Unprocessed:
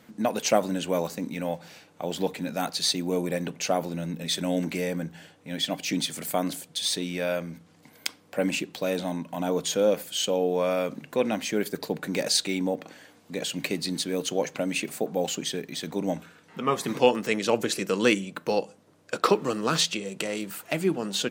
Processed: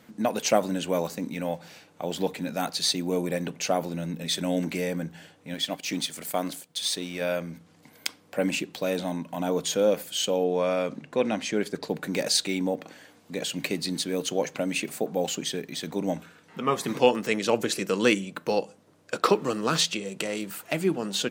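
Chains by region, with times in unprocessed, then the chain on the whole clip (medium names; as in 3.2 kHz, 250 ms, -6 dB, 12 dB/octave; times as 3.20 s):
5.54–7.21 s: companding laws mixed up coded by A + bass shelf 240 Hz -5 dB
10.44–11.89 s: low-pass 8.3 kHz + tape noise reduction on one side only decoder only
whole clip: none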